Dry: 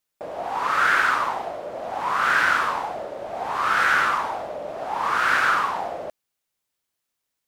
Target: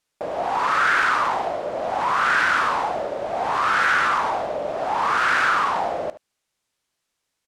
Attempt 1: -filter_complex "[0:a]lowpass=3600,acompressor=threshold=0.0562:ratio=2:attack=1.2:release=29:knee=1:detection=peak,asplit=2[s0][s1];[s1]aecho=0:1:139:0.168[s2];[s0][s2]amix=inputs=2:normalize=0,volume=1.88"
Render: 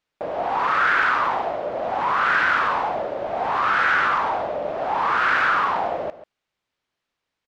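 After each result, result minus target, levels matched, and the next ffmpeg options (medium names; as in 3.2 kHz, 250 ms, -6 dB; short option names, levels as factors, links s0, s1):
echo 65 ms late; 8 kHz band -10.5 dB
-filter_complex "[0:a]lowpass=3600,acompressor=threshold=0.0562:ratio=2:attack=1.2:release=29:knee=1:detection=peak,asplit=2[s0][s1];[s1]aecho=0:1:74:0.168[s2];[s0][s2]amix=inputs=2:normalize=0,volume=1.88"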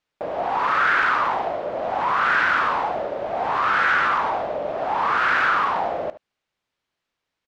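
8 kHz band -10.5 dB
-filter_complex "[0:a]lowpass=9200,acompressor=threshold=0.0562:ratio=2:attack=1.2:release=29:knee=1:detection=peak,asplit=2[s0][s1];[s1]aecho=0:1:74:0.168[s2];[s0][s2]amix=inputs=2:normalize=0,volume=1.88"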